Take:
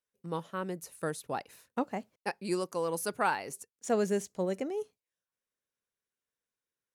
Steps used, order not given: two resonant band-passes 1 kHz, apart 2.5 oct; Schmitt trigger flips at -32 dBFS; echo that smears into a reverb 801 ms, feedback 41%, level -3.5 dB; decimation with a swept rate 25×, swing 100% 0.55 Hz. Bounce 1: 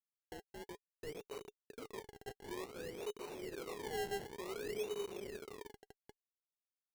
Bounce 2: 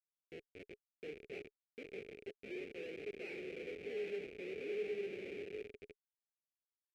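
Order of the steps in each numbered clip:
echo that smears into a reverb > Schmitt trigger > two resonant band-passes > decimation with a swept rate; decimation with a swept rate > echo that smears into a reverb > Schmitt trigger > two resonant band-passes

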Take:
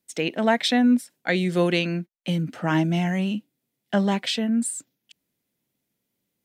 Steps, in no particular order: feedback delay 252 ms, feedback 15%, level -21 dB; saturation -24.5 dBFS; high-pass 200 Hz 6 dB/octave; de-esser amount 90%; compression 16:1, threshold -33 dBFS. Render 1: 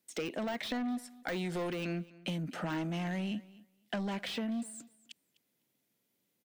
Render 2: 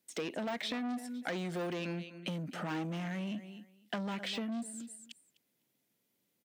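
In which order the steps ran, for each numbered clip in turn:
high-pass > saturation > de-esser > compression > feedback delay; feedback delay > de-esser > saturation > compression > high-pass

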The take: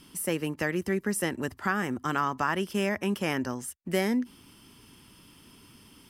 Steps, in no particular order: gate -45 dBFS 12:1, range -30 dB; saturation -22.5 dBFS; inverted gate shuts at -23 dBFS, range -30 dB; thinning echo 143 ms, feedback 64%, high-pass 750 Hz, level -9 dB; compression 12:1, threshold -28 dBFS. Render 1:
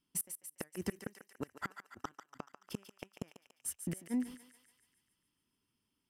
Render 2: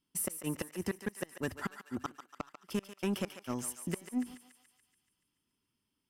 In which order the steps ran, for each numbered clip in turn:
compression > inverted gate > gate > thinning echo > saturation; saturation > inverted gate > compression > gate > thinning echo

